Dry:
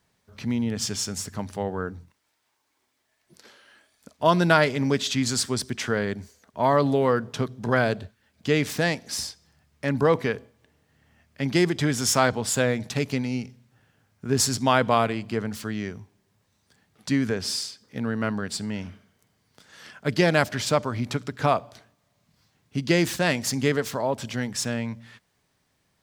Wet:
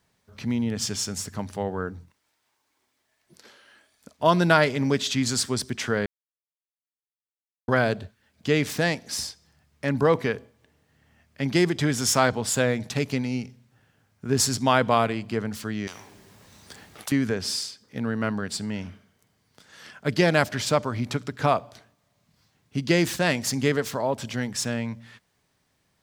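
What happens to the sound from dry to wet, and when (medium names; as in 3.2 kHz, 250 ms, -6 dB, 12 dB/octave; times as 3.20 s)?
6.06–7.68 s: mute
15.87–17.12 s: spectrum-flattening compressor 10:1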